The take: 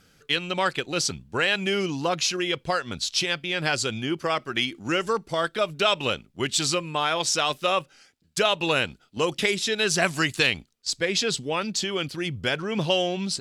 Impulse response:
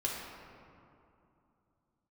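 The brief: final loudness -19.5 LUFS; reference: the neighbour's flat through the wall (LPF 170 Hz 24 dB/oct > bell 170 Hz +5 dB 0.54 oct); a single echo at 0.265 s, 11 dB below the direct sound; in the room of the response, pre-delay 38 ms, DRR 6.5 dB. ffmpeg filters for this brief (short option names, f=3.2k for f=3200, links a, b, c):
-filter_complex "[0:a]aecho=1:1:265:0.282,asplit=2[a][b];[1:a]atrim=start_sample=2205,adelay=38[c];[b][c]afir=irnorm=-1:irlink=0,volume=-11dB[d];[a][d]amix=inputs=2:normalize=0,lowpass=f=170:w=0.5412,lowpass=f=170:w=1.3066,equalizer=f=170:t=o:w=0.54:g=5,volume=17.5dB"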